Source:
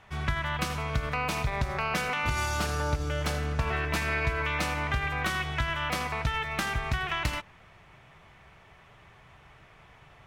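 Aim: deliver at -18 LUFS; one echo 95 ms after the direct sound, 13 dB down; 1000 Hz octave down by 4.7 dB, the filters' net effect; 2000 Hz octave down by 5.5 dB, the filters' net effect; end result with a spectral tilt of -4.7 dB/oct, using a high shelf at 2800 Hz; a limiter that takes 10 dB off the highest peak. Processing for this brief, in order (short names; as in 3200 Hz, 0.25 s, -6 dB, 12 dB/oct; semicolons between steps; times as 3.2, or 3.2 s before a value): bell 1000 Hz -4.5 dB; bell 2000 Hz -8.5 dB; high shelf 2800 Hz +6.5 dB; limiter -24.5 dBFS; echo 95 ms -13 dB; gain +16 dB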